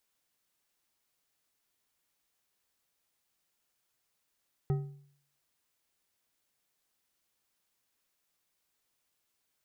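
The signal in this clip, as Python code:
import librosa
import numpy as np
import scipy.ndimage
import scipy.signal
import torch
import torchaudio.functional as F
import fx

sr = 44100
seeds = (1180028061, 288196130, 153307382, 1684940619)

y = fx.strike_metal(sr, length_s=1.55, level_db=-24.0, body='bar', hz=142.0, decay_s=0.6, tilt_db=8.5, modes=5)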